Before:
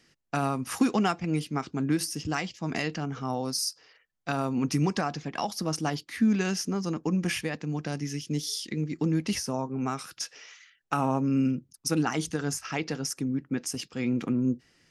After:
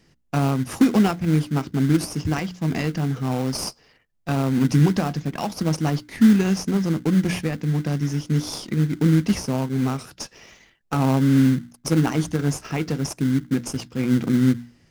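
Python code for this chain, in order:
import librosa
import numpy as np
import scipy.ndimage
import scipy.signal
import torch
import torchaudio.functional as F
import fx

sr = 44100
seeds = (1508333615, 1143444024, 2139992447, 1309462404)

p1 = fx.low_shelf(x, sr, hz=230.0, db=11.0)
p2 = fx.hum_notches(p1, sr, base_hz=60, count=5)
p3 = fx.sample_hold(p2, sr, seeds[0], rate_hz=1800.0, jitter_pct=20)
y = p2 + F.gain(torch.from_numpy(p3), -5.5).numpy()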